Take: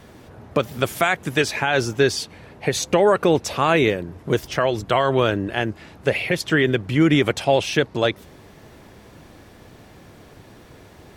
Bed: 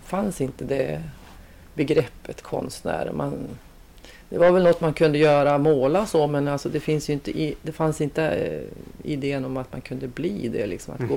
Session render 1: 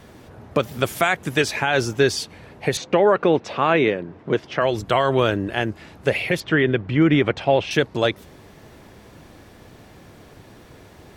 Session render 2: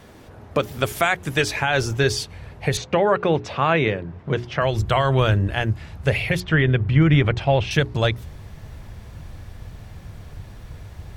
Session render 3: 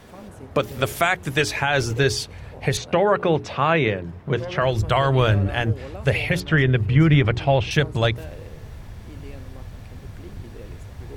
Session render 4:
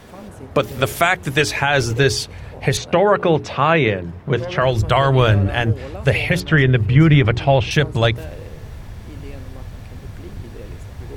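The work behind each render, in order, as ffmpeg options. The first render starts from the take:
-filter_complex "[0:a]asettb=1/sr,asplit=3[s0][s1][s2];[s0]atrim=end=2.774[s3];[s1]atrim=start=2.77:end=4.62,asetpts=PTS-STARTPTS,afade=t=in:d=0.004:c=qsin,afade=t=out:st=1.846:d=0.004:c=qsin,highpass=150,lowpass=3200[s4];[s2]atrim=start=4.616[s5];[s3][s4]acrossfade=d=0.004:c1=hsin:c2=qsin[s6];[s6][s5]acrossfade=d=0.004:c1=qsin:c2=hsin,asettb=1/sr,asplit=3[s7][s8][s9];[s7]atrim=end=6.404[s10];[s8]atrim=start=6.4:end=7.71,asetpts=PTS-STARTPTS,afade=t=in:d=0.004:c=qsin,afade=t=out:st=1.306:d=0.004:c=qsin,lowpass=3000[s11];[s9]atrim=start=7.706[s12];[s10][s11]acrossfade=d=0.004:c1=hsin:c2=qsin[s13];[s13][s12]acrossfade=d=0.004:c1=qsin:c2=hsin"
-af "bandreject=f=60:t=h:w=6,bandreject=f=120:t=h:w=6,bandreject=f=180:t=h:w=6,bandreject=f=240:t=h:w=6,bandreject=f=300:t=h:w=6,bandreject=f=360:t=h:w=6,bandreject=f=420:t=h:w=6,asubboost=boost=9:cutoff=100"
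-filter_complex "[1:a]volume=0.133[s0];[0:a][s0]amix=inputs=2:normalize=0"
-af "volume=1.58,alimiter=limit=0.794:level=0:latency=1"

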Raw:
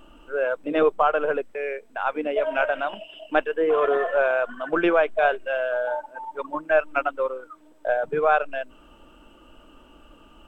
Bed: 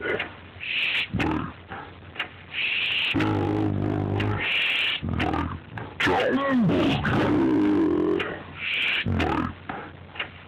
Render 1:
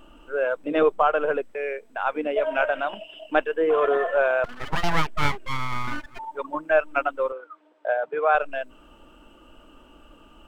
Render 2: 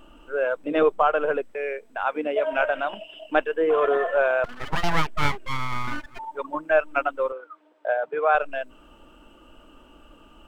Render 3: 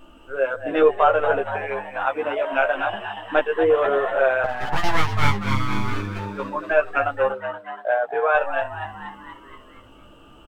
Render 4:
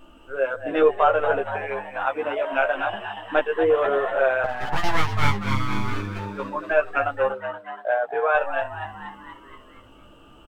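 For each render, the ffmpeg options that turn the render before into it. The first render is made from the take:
-filter_complex "[0:a]asettb=1/sr,asplit=3[s0][s1][s2];[s0]atrim=end=4.444[s3];[s1]atrim=start=4.44:end=6.19,asetpts=PTS-STARTPTS,afade=t=in:d=0.004:c=qsin,afade=t=out:st=1.746:d=0.004:c=qsin,aeval=exprs='abs(val(0))':c=same[s4];[s2]atrim=start=6.186[s5];[s3][s4]acrossfade=d=0.004:c1=hsin:c2=qsin[s6];[s6][s5]acrossfade=d=0.004:c1=qsin:c2=hsin,asettb=1/sr,asplit=3[s7][s8][s9];[s7]atrim=end=7.324[s10];[s8]atrim=start=7.32:end=8.35,asetpts=PTS-STARTPTS,afade=t=in:d=0.004:c=qsin,afade=t=out:st=1.026:d=0.004:c=qsin,highpass=450,lowpass=3300[s11];[s9]atrim=start=8.346[s12];[s10][s11]acrossfade=d=0.004:c1=hsin:c2=qsin[s13];[s13][s12]acrossfade=d=0.004:c1=qsin:c2=hsin"
-filter_complex "[0:a]asettb=1/sr,asplit=3[s0][s1][s2];[s0]atrim=end=2.034[s3];[s1]atrim=start=2.03:end=2.53,asetpts=PTS-STARTPTS,afade=t=in:d=0.004:c=qsin,afade=t=out:st=0.496:d=0.004:c=qsin,highpass=f=77:p=1[s4];[s2]atrim=start=2.526[s5];[s3][s4]acrossfade=d=0.004:c1=hsin:c2=qsin[s6];[s6][s5]acrossfade=d=0.004:c1=qsin:c2=hsin"
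-filter_complex "[0:a]asplit=2[s0][s1];[s1]adelay=15,volume=0.75[s2];[s0][s2]amix=inputs=2:normalize=0,asplit=7[s3][s4][s5][s6][s7][s8][s9];[s4]adelay=237,afreqshift=100,volume=0.316[s10];[s5]adelay=474,afreqshift=200,volume=0.178[s11];[s6]adelay=711,afreqshift=300,volume=0.0989[s12];[s7]adelay=948,afreqshift=400,volume=0.0556[s13];[s8]adelay=1185,afreqshift=500,volume=0.0313[s14];[s9]adelay=1422,afreqshift=600,volume=0.0174[s15];[s3][s10][s11][s12][s13][s14][s15]amix=inputs=7:normalize=0"
-af "volume=0.841"

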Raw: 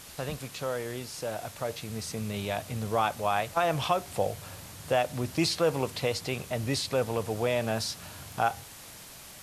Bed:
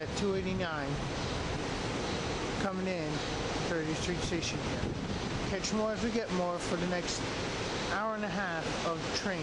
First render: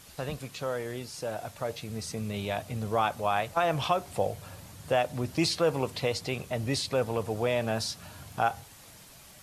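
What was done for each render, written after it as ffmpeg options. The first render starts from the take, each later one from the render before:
-af "afftdn=nr=6:nf=-47"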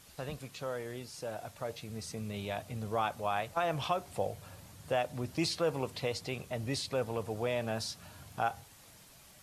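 -af "volume=0.531"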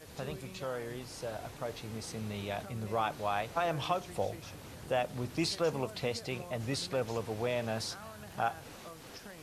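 -filter_complex "[1:a]volume=0.168[s0];[0:a][s0]amix=inputs=2:normalize=0"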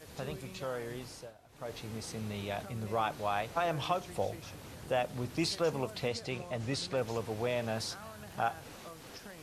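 -filter_complex "[0:a]asettb=1/sr,asplit=3[s0][s1][s2];[s0]atrim=end=6.084[s3];[s1]atrim=start=6.08:end=6.97,asetpts=PTS-STARTPTS,afade=t=in:d=0.004:c=qsin,afade=t=out:st=0.886:d=0.004:c=qsin,lowpass=9100[s4];[s2]atrim=start=6.966[s5];[s3][s4]acrossfade=d=0.004:c1=hsin:c2=qsin[s6];[s6][s5]acrossfade=d=0.004:c1=qsin:c2=hsin,asplit=3[s7][s8][s9];[s7]atrim=end=1.34,asetpts=PTS-STARTPTS,afade=t=out:st=1.06:d=0.28:silence=0.125893[s10];[s8]atrim=start=1.34:end=1.48,asetpts=PTS-STARTPTS,volume=0.126[s11];[s9]atrim=start=1.48,asetpts=PTS-STARTPTS,afade=t=in:d=0.28:silence=0.125893[s12];[s10][s11][s12]concat=n=3:v=0:a=1"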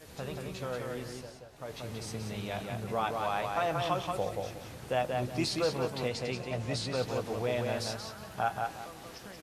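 -filter_complex "[0:a]asplit=2[s0][s1];[s1]adelay=16,volume=0.282[s2];[s0][s2]amix=inputs=2:normalize=0,asplit=2[s3][s4];[s4]adelay=181,lowpass=f=5000:p=1,volume=0.668,asplit=2[s5][s6];[s6]adelay=181,lowpass=f=5000:p=1,volume=0.26,asplit=2[s7][s8];[s8]adelay=181,lowpass=f=5000:p=1,volume=0.26,asplit=2[s9][s10];[s10]adelay=181,lowpass=f=5000:p=1,volume=0.26[s11];[s3][s5][s7][s9][s11]amix=inputs=5:normalize=0"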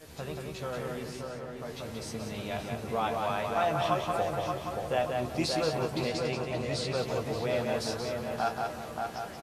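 -filter_complex "[0:a]asplit=2[s0][s1];[s1]adelay=13,volume=0.447[s2];[s0][s2]amix=inputs=2:normalize=0,asplit=2[s3][s4];[s4]adelay=578,lowpass=f=2300:p=1,volume=0.631,asplit=2[s5][s6];[s6]adelay=578,lowpass=f=2300:p=1,volume=0.41,asplit=2[s7][s8];[s8]adelay=578,lowpass=f=2300:p=1,volume=0.41,asplit=2[s9][s10];[s10]adelay=578,lowpass=f=2300:p=1,volume=0.41,asplit=2[s11][s12];[s12]adelay=578,lowpass=f=2300:p=1,volume=0.41[s13];[s3][s5][s7][s9][s11][s13]amix=inputs=6:normalize=0"

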